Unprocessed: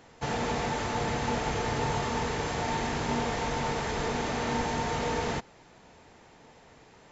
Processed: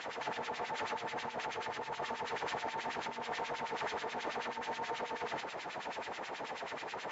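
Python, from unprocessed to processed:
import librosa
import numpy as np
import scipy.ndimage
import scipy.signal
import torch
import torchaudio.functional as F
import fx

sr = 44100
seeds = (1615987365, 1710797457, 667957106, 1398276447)

y = fx.over_compress(x, sr, threshold_db=-41.0, ratio=-1.0)
y = fx.filter_lfo_bandpass(y, sr, shape='sine', hz=9.3, low_hz=620.0, high_hz=3400.0, q=1.2)
y = F.gain(torch.from_numpy(y), 8.0).numpy()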